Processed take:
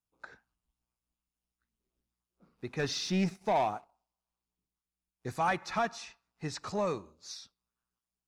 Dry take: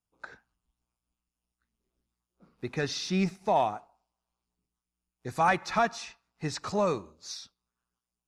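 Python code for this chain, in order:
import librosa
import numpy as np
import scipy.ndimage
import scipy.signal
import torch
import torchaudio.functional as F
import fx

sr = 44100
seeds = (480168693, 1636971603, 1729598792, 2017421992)

p1 = np.clip(10.0 ** (23.0 / 20.0) * x, -1.0, 1.0) / 10.0 ** (23.0 / 20.0)
p2 = x + F.gain(torch.from_numpy(p1), -7.0).numpy()
p3 = fx.leveller(p2, sr, passes=1, at=(2.79, 5.36))
y = F.gain(torch.from_numpy(p3), -7.5).numpy()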